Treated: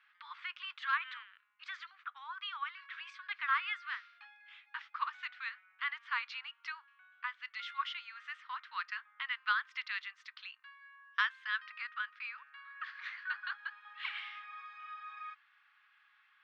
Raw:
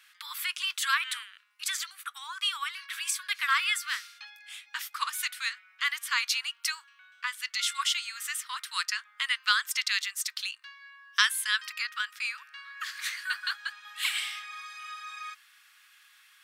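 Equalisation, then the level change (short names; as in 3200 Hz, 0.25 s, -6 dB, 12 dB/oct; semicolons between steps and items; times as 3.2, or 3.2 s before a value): air absorption 190 m; tape spacing loss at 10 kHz 37 dB; +1.5 dB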